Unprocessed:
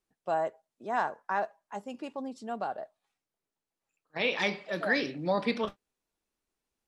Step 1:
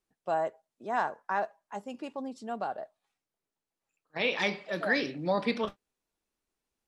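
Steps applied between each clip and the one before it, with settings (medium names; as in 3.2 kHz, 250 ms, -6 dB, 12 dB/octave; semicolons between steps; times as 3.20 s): no audible change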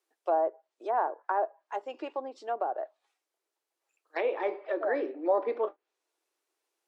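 low-pass that closes with the level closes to 820 Hz, closed at -30 dBFS; elliptic high-pass 330 Hz, stop band 50 dB; trim +5 dB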